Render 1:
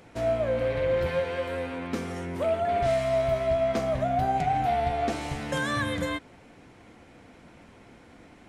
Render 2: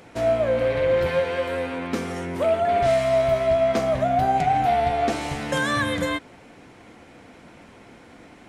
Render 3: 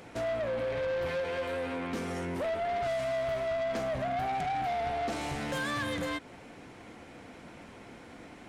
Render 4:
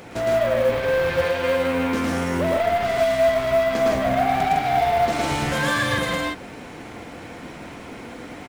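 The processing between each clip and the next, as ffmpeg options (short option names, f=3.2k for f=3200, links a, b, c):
-af "lowshelf=f=120:g=-6.5,volume=5.5dB"
-filter_complex "[0:a]asplit=2[a][b];[b]acompressor=threshold=-29dB:ratio=6,volume=1.5dB[c];[a][c]amix=inputs=2:normalize=0,asoftclip=type=tanh:threshold=-20.5dB,volume=-8.5dB"
-af "aecho=1:1:110.8|157.4:0.891|0.794,acrusher=bits=7:mode=log:mix=0:aa=0.000001,volume=8dB"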